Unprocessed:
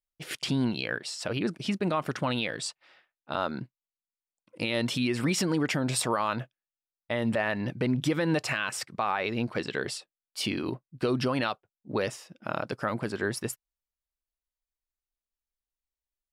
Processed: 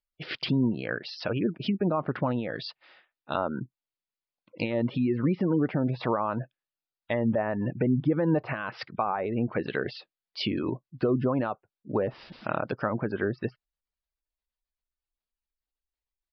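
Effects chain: 12.09–12.60 s: added noise white -49 dBFS; spectral gate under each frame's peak -25 dB strong; resampled via 11.025 kHz; low-pass that closes with the level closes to 1 kHz, closed at -25 dBFS; trim +2.5 dB

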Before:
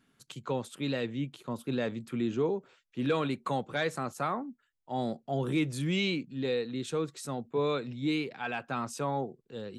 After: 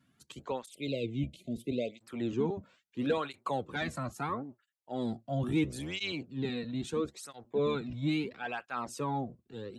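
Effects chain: octave divider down 1 oct, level -2 dB; spectral selection erased 0.67–1.99 s, 690–2000 Hz; cancelling through-zero flanger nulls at 0.75 Hz, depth 2.6 ms

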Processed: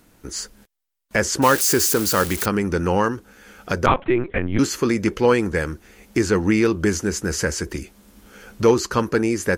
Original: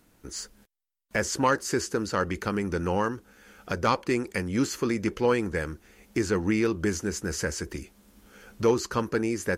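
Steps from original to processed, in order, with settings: 1.42–2.46 s: zero-crossing glitches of -22 dBFS; 3.86–4.59 s: LPC vocoder at 8 kHz pitch kept; trim +7 dB

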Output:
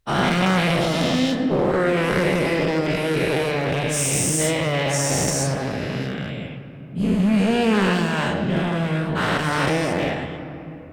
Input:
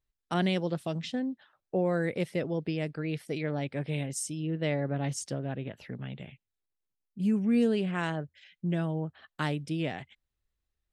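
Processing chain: every event in the spectrogram widened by 480 ms; one-sided clip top -27.5 dBFS; on a send: reverberation RT60 3.4 s, pre-delay 5 ms, DRR 7.5 dB; on the sum: trim +6.5 dB

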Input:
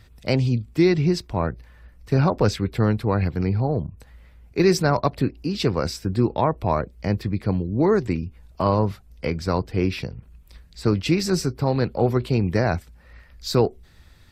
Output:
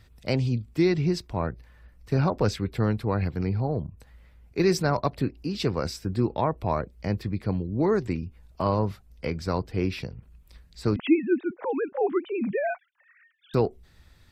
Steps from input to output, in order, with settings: 10.96–13.54 s: formants replaced by sine waves; trim -4.5 dB

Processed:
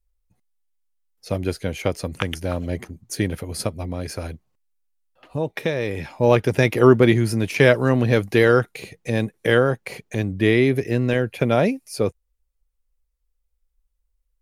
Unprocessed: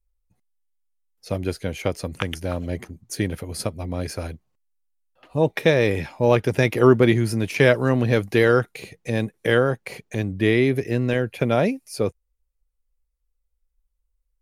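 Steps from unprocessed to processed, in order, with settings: 3.82–6.10 s: compression 2:1, threshold -27 dBFS, peak gain reduction 8.5 dB; trim +1.5 dB

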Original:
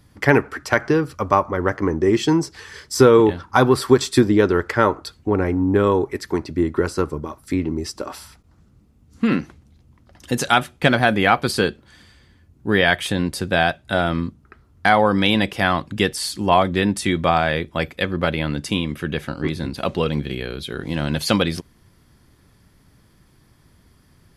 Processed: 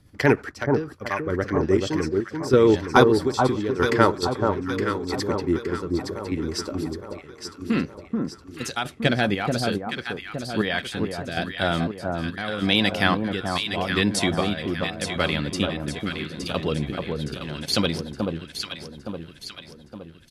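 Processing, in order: dynamic bell 4.7 kHz, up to +6 dB, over -39 dBFS, Q 0.99; square tremolo 0.66 Hz, depth 65%, duty 40%; rotary cabinet horn 8 Hz, later 0.75 Hz, at 0.61 s; tempo 1.2×; on a send: echo whose repeats swap between lows and highs 433 ms, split 1.2 kHz, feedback 69%, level -3 dB; on the sum: trim -1 dB

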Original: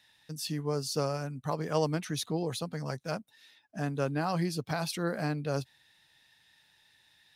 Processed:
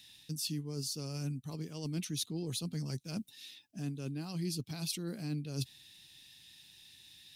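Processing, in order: treble shelf 5 kHz +4.5 dB; reverse; compression 12:1, threshold -40 dBFS, peak gain reduction 18 dB; reverse; high-order bell 960 Hz -14 dB 2.3 oct; trim +7.5 dB

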